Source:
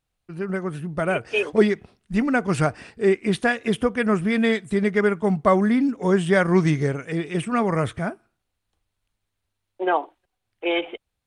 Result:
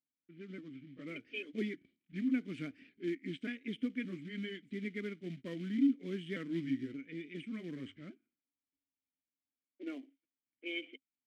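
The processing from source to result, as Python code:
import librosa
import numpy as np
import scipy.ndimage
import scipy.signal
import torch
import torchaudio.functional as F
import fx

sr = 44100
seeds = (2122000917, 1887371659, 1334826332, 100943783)

y = fx.pitch_trill(x, sr, semitones=-2.0, every_ms=578)
y = fx.hum_notches(y, sr, base_hz=50, count=2)
y = fx.quant_float(y, sr, bits=2)
y = fx.env_lowpass(y, sr, base_hz=2000.0, full_db=-19.5)
y = fx.vowel_filter(y, sr, vowel='i')
y = y * 10.0 ** (-5.0 / 20.0)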